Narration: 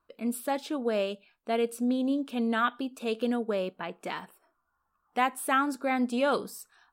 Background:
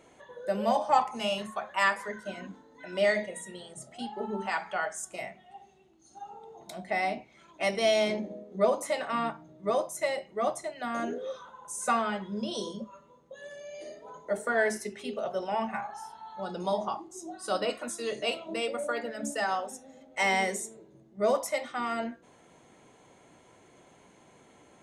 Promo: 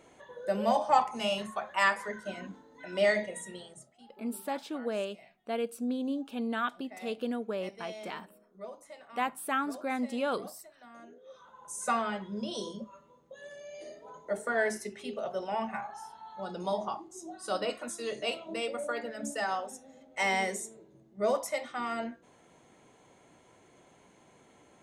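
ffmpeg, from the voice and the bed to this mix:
ffmpeg -i stem1.wav -i stem2.wav -filter_complex "[0:a]adelay=4000,volume=-5dB[link_01];[1:a]volume=16dB,afade=type=out:start_time=3.56:duration=0.38:silence=0.11885,afade=type=in:start_time=11.24:duration=0.44:silence=0.149624[link_02];[link_01][link_02]amix=inputs=2:normalize=0" out.wav

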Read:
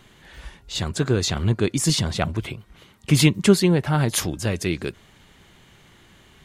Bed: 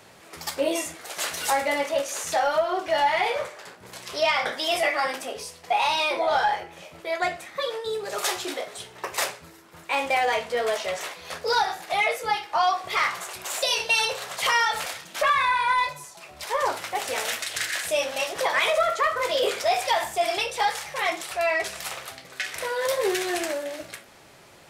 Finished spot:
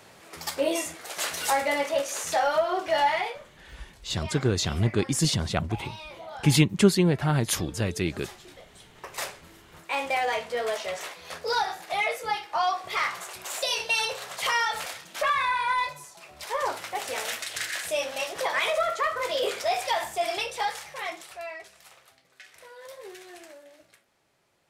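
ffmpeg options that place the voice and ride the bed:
ffmpeg -i stem1.wav -i stem2.wav -filter_complex "[0:a]adelay=3350,volume=-3.5dB[link_01];[1:a]volume=13.5dB,afade=type=out:start_time=3.08:duration=0.31:silence=0.141254,afade=type=in:start_time=8.67:duration=0.92:silence=0.188365,afade=type=out:start_time=20.44:duration=1.23:silence=0.16788[link_02];[link_01][link_02]amix=inputs=2:normalize=0" out.wav

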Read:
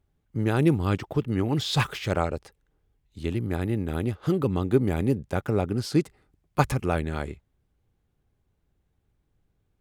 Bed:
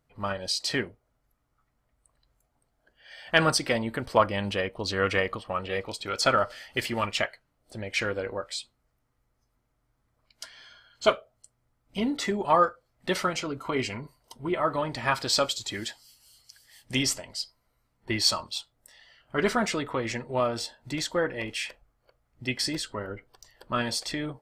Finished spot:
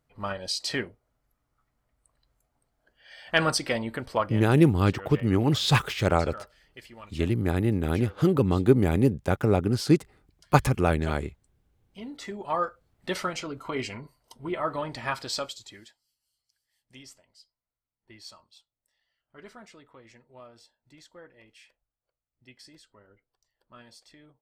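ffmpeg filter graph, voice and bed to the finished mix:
ffmpeg -i stem1.wav -i stem2.wav -filter_complex "[0:a]adelay=3950,volume=2.5dB[link_01];[1:a]volume=13.5dB,afade=type=out:start_time=3.96:duration=0.59:silence=0.149624,afade=type=in:start_time=11.79:duration=1.32:silence=0.177828,afade=type=out:start_time=14.92:duration=1.04:silence=0.105925[link_02];[link_01][link_02]amix=inputs=2:normalize=0" out.wav

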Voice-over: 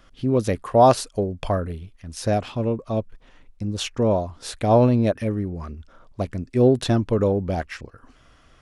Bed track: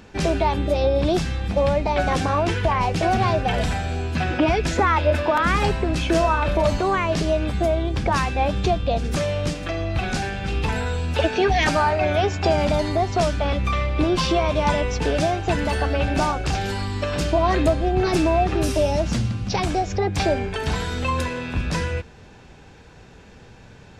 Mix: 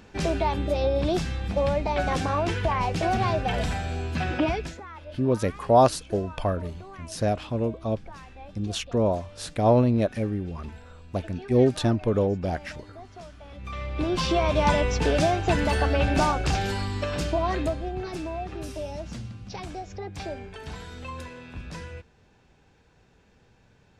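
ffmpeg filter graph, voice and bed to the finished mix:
ffmpeg -i stem1.wav -i stem2.wav -filter_complex "[0:a]adelay=4950,volume=-3dB[link_01];[1:a]volume=18dB,afade=type=out:start_time=4.41:duration=0.39:silence=0.112202,afade=type=in:start_time=13.51:duration=1.11:silence=0.0749894,afade=type=out:start_time=16.45:duration=1.65:silence=0.223872[link_02];[link_01][link_02]amix=inputs=2:normalize=0" out.wav

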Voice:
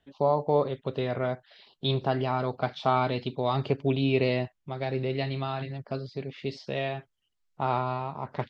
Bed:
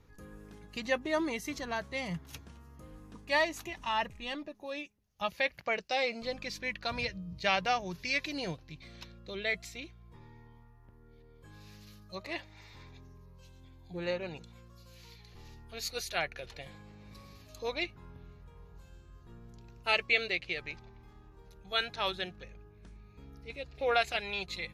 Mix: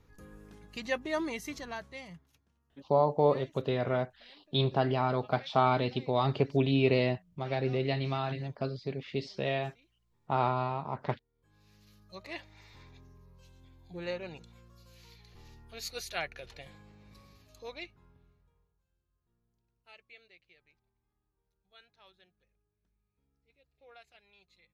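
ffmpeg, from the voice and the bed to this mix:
ffmpeg -i stem1.wav -i stem2.wav -filter_complex "[0:a]adelay=2700,volume=-1dB[link_01];[1:a]volume=19dB,afade=type=out:start_time=1.45:duration=0.88:silence=0.0841395,afade=type=in:start_time=11.32:duration=1.11:silence=0.0944061,afade=type=out:start_time=16.59:duration=2.17:silence=0.0562341[link_02];[link_01][link_02]amix=inputs=2:normalize=0" out.wav

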